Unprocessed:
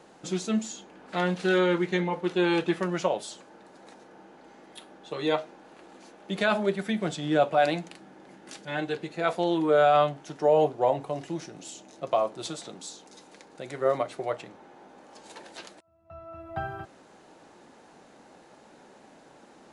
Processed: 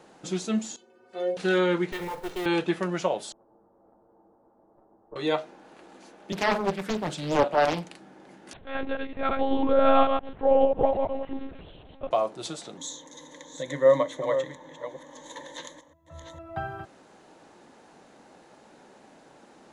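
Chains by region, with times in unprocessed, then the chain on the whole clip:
0.76–1.37 s: peaking EQ 420 Hz +13 dB 0.8 oct + inharmonic resonator 110 Hz, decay 0.49 s, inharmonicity 0.03
1.92–2.46 s: comb filter that takes the minimum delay 2.2 ms + compression 2.5:1, threshold -30 dBFS + short-mantissa float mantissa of 2-bit
3.32–5.16 s: comb filter that takes the minimum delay 9 ms + Bessel low-pass 620 Hz, order 6 + bass shelf 440 Hz -10.5 dB
6.32–7.85 s: high-pass 120 Hz 24 dB/octave + flutter echo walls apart 8 m, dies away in 0.21 s + loudspeaker Doppler distortion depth 0.93 ms
8.53–12.11 s: chunks repeated in reverse 110 ms, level -2.5 dB + treble shelf 2.6 kHz -6.5 dB + monotone LPC vocoder at 8 kHz 270 Hz
12.77–16.39 s: chunks repeated in reverse 452 ms, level -9.5 dB + rippled EQ curve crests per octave 1.1, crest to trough 17 dB
whole clip: none

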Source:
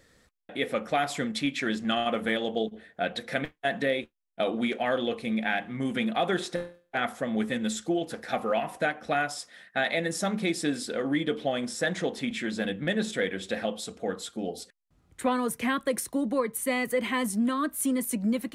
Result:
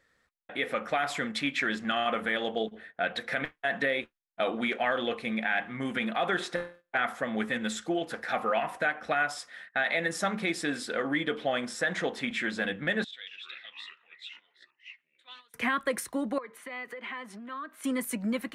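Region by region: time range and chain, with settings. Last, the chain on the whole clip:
13.04–15.54 s: band-pass filter 3.6 kHz, Q 7.3 + ever faster or slower copies 224 ms, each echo -5 st, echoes 2, each echo -6 dB
16.38–17.84 s: three-band isolator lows -23 dB, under 230 Hz, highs -18 dB, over 4.7 kHz + compression 16:1, threshold -37 dBFS
whole clip: gate -51 dBFS, range -10 dB; peaking EQ 1.5 kHz +11 dB 2.3 oct; peak limiter -12.5 dBFS; trim -5 dB

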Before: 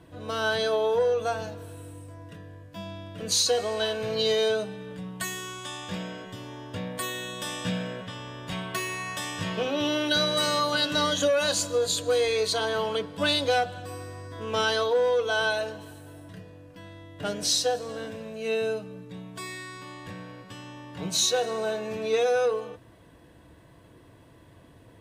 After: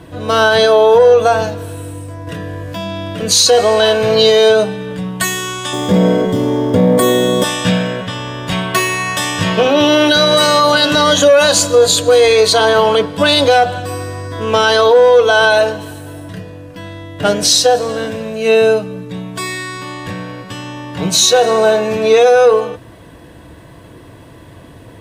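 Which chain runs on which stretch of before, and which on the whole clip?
2.27–3.19 s: hum notches 50/100/150/200/250/300/350 Hz + level flattener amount 70%
5.73–7.44 s: companding laws mixed up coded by mu + peaking EQ 2.8 kHz -10.5 dB 1.7 oct + small resonant body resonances 240/430/2100/3300 Hz, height 12 dB, ringing for 25 ms
whole clip: dynamic bell 780 Hz, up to +4 dB, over -34 dBFS, Q 0.77; loudness maximiser +16.5 dB; trim -1 dB

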